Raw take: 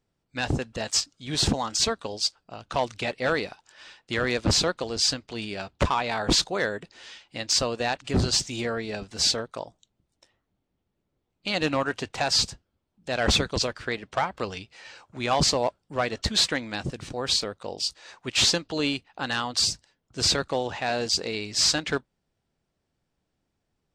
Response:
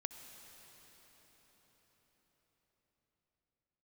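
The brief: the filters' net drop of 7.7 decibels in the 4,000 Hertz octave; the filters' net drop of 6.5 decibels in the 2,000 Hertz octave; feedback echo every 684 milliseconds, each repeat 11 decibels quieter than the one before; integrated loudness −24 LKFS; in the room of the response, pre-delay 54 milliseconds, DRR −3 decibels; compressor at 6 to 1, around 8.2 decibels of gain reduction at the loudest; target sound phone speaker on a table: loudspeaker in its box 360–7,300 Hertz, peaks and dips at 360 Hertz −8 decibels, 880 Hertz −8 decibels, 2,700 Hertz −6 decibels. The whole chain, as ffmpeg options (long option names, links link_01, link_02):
-filter_complex "[0:a]equalizer=frequency=2000:width_type=o:gain=-5,equalizer=frequency=4000:width_type=o:gain=-8,acompressor=threshold=-28dB:ratio=6,aecho=1:1:684|1368|2052:0.282|0.0789|0.0221,asplit=2[link_01][link_02];[1:a]atrim=start_sample=2205,adelay=54[link_03];[link_02][link_03]afir=irnorm=-1:irlink=0,volume=5dB[link_04];[link_01][link_04]amix=inputs=2:normalize=0,highpass=frequency=360:width=0.5412,highpass=frequency=360:width=1.3066,equalizer=frequency=360:width_type=q:width=4:gain=-8,equalizer=frequency=880:width_type=q:width=4:gain=-8,equalizer=frequency=2700:width_type=q:width=4:gain=-6,lowpass=frequency=7300:width=0.5412,lowpass=frequency=7300:width=1.3066,volume=8dB"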